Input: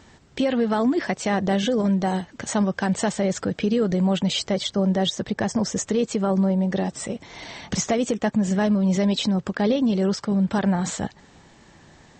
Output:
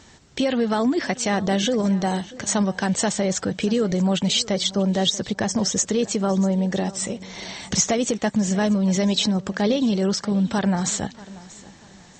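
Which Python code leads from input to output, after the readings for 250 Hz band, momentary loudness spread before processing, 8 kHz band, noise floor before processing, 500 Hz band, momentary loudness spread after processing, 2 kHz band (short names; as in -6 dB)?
0.0 dB, 7 LU, +7.0 dB, -53 dBFS, 0.0 dB, 6 LU, +1.5 dB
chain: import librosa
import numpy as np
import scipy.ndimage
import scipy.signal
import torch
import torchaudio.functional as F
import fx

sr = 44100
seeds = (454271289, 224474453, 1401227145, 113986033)

y = fx.peak_eq(x, sr, hz=6000.0, db=7.5, octaves=1.7)
y = fx.notch(y, sr, hz=4900.0, q=27.0)
y = fx.echo_feedback(y, sr, ms=637, feedback_pct=31, wet_db=-19.5)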